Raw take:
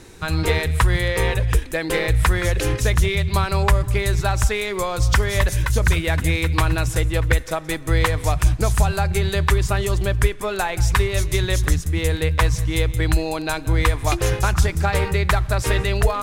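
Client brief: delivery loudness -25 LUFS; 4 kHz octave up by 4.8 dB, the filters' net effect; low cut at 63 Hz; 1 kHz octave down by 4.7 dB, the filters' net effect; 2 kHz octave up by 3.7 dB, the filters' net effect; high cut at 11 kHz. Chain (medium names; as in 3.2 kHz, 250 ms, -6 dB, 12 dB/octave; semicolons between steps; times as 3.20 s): high-pass 63 Hz; low-pass 11 kHz; peaking EQ 1 kHz -8 dB; peaking EQ 2 kHz +5.5 dB; peaking EQ 4 kHz +4.5 dB; trim -4.5 dB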